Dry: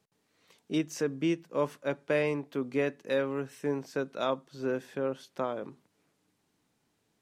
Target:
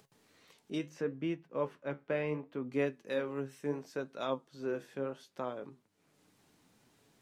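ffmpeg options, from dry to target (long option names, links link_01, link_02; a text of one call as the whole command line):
ffmpeg -i in.wav -filter_complex "[0:a]acompressor=mode=upward:threshold=-49dB:ratio=2.5,flanger=delay=7.1:depth=7.8:regen=64:speed=0.71:shape=sinusoidal,asettb=1/sr,asplit=3[link_01][link_02][link_03];[link_01]atrim=end=0.894[link_04];[link_02]atrim=start=0.89:end=2.72,asetpts=PTS-STARTPTS,afade=type=in:duration=0.004:curve=qsin,afade=type=out:start_time=1.826:duration=0.004:curve=qsin,bass=frequency=250:gain=2,treble=frequency=4000:gain=-14[link_05];[link_03]atrim=start=2.716[link_06];[link_04][link_05]acrossfade=duration=0.004:curve1=hsin:curve2=qsin[link_07];[link_07][link_06]acrossfade=duration=0.004:curve1=qsin:curve2=hsin,volume=-1.5dB" out.wav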